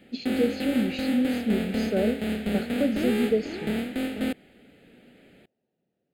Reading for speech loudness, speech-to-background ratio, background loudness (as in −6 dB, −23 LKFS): −28.0 LKFS, 1.5 dB, −29.5 LKFS